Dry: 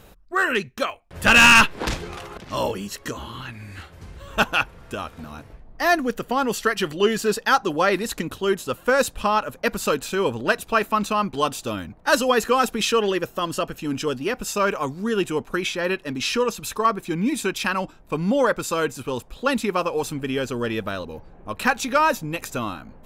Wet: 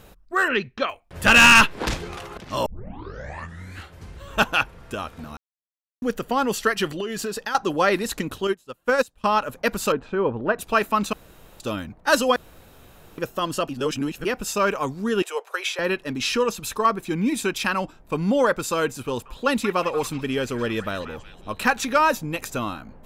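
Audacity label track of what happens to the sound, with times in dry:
0.480000	0.890000	low-pass filter 4,600 Hz 24 dB per octave
2.660000	2.660000	tape start 1.13 s
5.370000	6.020000	silence
7.000000	7.550000	downward compressor 16 to 1, threshold −24 dBFS
8.470000	9.240000	expander for the loud parts 2.5 to 1, over −31 dBFS
9.920000	10.590000	low-pass filter 1,400 Hz
11.130000	11.600000	fill with room tone
12.360000	13.180000	fill with room tone
13.690000	14.250000	reverse
15.220000	15.790000	Butterworth high-pass 450 Hz 48 dB per octave
19.070000	21.850000	echo through a band-pass that steps 182 ms, band-pass from 1,500 Hz, each repeat 0.7 octaves, level −9 dB

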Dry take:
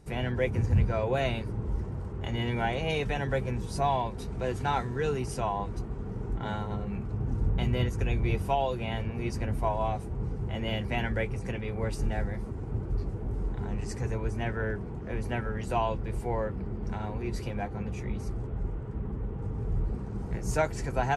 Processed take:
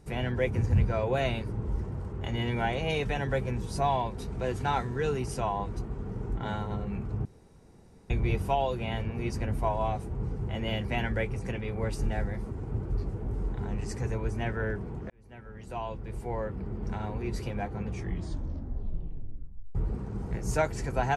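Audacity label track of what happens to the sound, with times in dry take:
7.250000	8.100000	fill with room tone
15.100000	16.840000	fade in
17.900000	17.900000	tape stop 1.85 s

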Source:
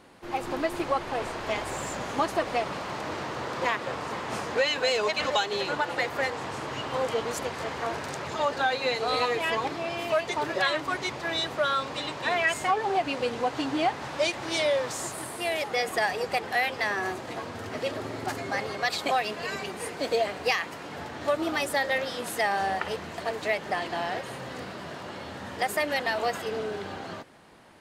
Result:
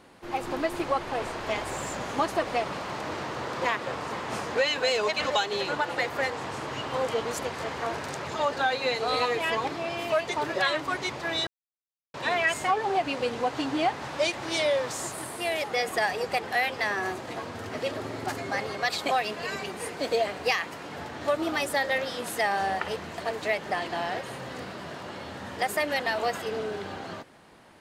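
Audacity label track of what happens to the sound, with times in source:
11.470000	12.140000	silence

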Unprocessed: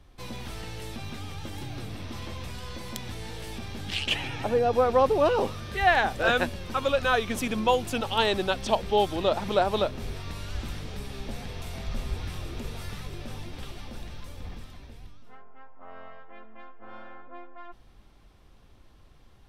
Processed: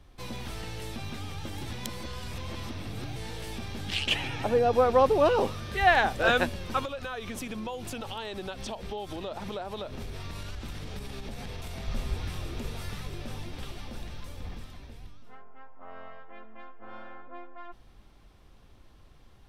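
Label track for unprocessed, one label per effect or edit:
1.660000	3.160000	reverse
6.850000	11.880000	downward compressor, threshold −33 dBFS

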